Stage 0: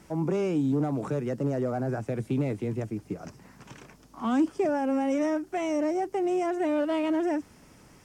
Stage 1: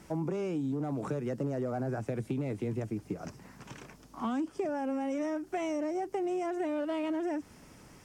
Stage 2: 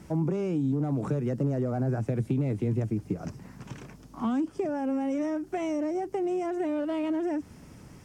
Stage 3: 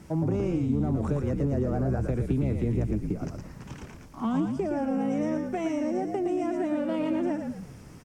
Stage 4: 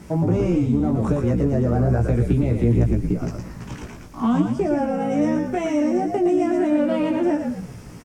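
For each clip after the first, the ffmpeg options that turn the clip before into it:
-af "acompressor=threshold=-30dB:ratio=6"
-af "equalizer=f=100:w=0.36:g=9"
-filter_complex "[0:a]asplit=6[a][b][c][d][e][f];[b]adelay=114,afreqshift=-54,volume=-4.5dB[g];[c]adelay=228,afreqshift=-108,volume=-12.7dB[h];[d]adelay=342,afreqshift=-162,volume=-20.9dB[i];[e]adelay=456,afreqshift=-216,volume=-29dB[j];[f]adelay=570,afreqshift=-270,volume=-37.2dB[k];[a][g][h][i][j][k]amix=inputs=6:normalize=0"
-filter_complex "[0:a]asplit=2[a][b];[b]adelay=17,volume=-4dB[c];[a][c]amix=inputs=2:normalize=0,volume=6dB"

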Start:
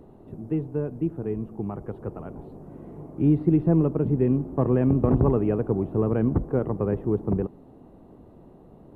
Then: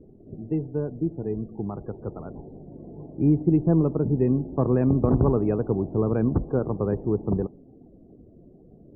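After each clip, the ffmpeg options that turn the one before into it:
-af "afftdn=nr=25:nf=-46"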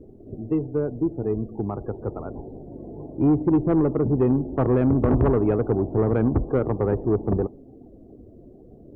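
-af "equalizer=f=170:w=2.9:g=-8.5,asoftclip=type=tanh:threshold=-18dB,volume=5.5dB"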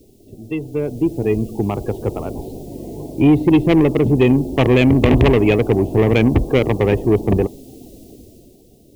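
-af "dynaudnorm=f=130:g=13:m=12.5dB,aexciter=amount=12.6:drive=9.8:freq=2.3k,volume=-3.5dB"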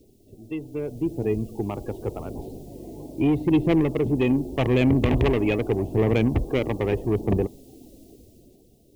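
-af "aphaser=in_gain=1:out_gain=1:delay=3.6:decay=0.23:speed=0.82:type=sinusoidal,volume=-8.5dB"

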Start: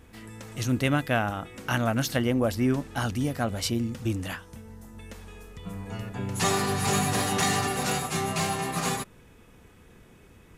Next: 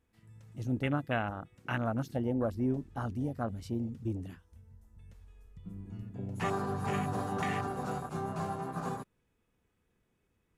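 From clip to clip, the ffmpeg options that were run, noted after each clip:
-af "afwtdn=0.0355,volume=-6.5dB"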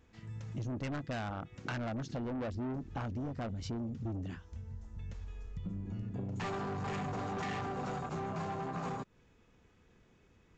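-af "aresample=16000,asoftclip=type=tanh:threshold=-35.5dB,aresample=44100,acompressor=threshold=-48dB:ratio=6,volume=11dB"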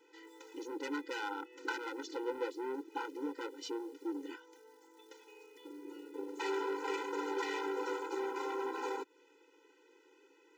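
-filter_complex "[0:a]asplit=2[a][b];[b]asoftclip=type=hard:threshold=-38dB,volume=-10dB[c];[a][c]amix=inputs=2:normalize=0,acrusher=bits=9:mode=log:mix=0:aa=0.000001,afftfilt=real='re*eq(mod(floor(b*sr/1024/260),2),1)':imag='im*eq(mod(floor(b*sr/1024/260),2),1)':win_size=1024:overlap=0.75,volume=4dB"

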